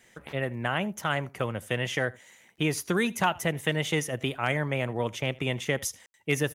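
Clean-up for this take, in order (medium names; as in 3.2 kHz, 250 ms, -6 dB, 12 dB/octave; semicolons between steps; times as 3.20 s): clip repair -12 dBFS; de-click; room tone fill 6.06–6.14 s; inverse comb 80 ms -23.5 dB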